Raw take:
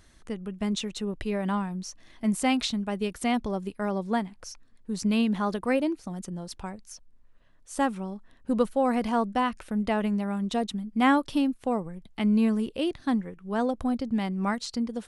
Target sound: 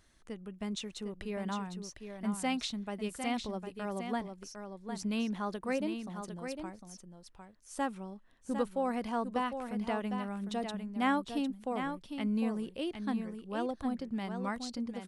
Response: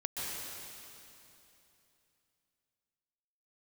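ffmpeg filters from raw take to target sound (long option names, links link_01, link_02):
-af "lowshelf=frequency=240:gain=-3.5,aecho=1:1:754:0.422,volume=-7.5dB"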